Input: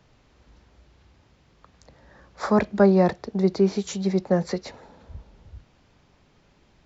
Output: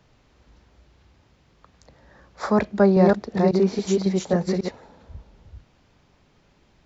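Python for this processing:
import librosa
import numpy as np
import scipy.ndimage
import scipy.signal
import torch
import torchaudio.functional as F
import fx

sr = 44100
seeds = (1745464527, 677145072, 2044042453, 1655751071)

y = fx.reverse_delay(x, sr, ms=274, wet_db=-2.0, at=(2.69, 4.69))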